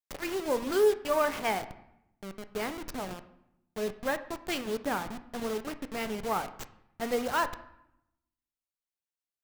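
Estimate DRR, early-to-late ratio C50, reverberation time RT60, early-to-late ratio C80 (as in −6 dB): 10.0 dB, 14.0 dB, 0.80 s, 16.5 dB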